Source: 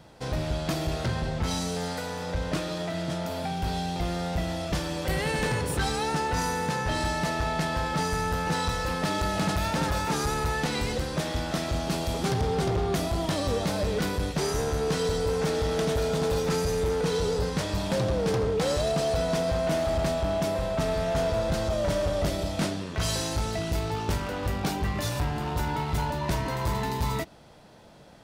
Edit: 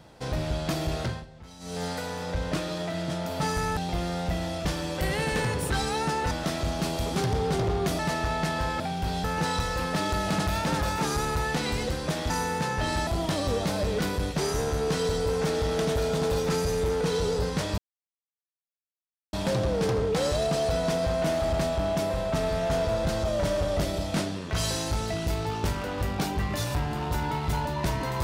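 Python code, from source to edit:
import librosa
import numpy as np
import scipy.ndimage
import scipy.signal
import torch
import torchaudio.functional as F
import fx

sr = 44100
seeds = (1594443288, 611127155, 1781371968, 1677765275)

y = fx.edit(x, sr, fx.fade_down_up(start_s=1.02, length_s=0.81, db=-18.5, fade_s=0.24),
    fx.swap(start_s=3.4, length_s=0.44, other_s=7.96, other_length_s=0.37),
    fx.swap(start_s=6.38, length_s=0.77, other_s=11.39, other_length_s=1.68),
    fx.insert_silence(at_s=17.78, length_s=1.55), tone=tone)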